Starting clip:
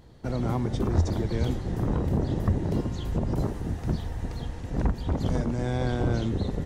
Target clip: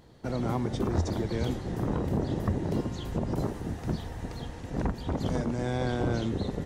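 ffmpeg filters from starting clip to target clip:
-af "lowshelf=f=98:g=-9.5"

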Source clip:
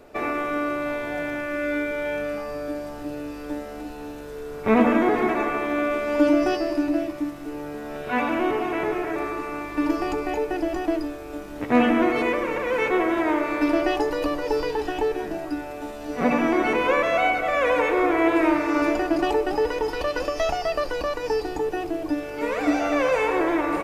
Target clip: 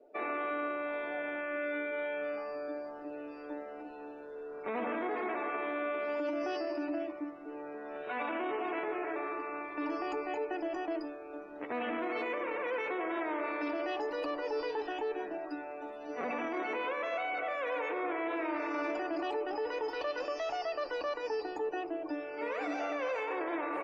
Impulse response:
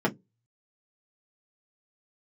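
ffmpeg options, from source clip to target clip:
-filter_complex "[0:a]afftdn=nr=21:nf=-45,acrossover=split=290 5900:gain=0.0708 1 0.251[a][b][c];[a][b][c]amix=inputs=3:normalize=0,alimiter=limit=-20.5dB:level=0:latency=1:release=22,volume=-7dB"

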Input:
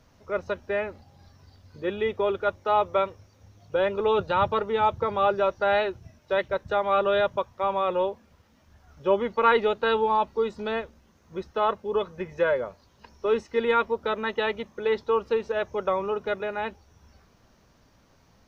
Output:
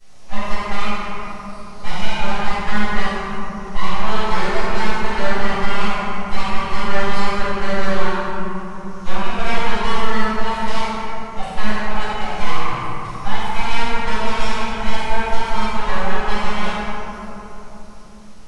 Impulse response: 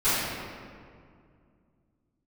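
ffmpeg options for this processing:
-filter_complex "[0:a]acrossover=split=220|630|3200[a][b][c][d];[a]acompressor=threshold=-54dB:ratio=4[e];[b]acompressor=threshold=-31dB:ratio=4[f];[c]acompressor=threshold=-35dB:ratio=4[g];[d]acompressor=threshold=-55dB:ratio=4[h];[e][f][g][h]amix=inputs=4:normalize=0,highshelf=f=2.5k:g=11.5,aeval=exprs='abs(val(0))':c=same[i];[1:a]atrim=start_sample=2205,asetrate=22491,aresample=44100[j];[i][j]afir=irnorm=-1:irlink=0,volume=-8dB"

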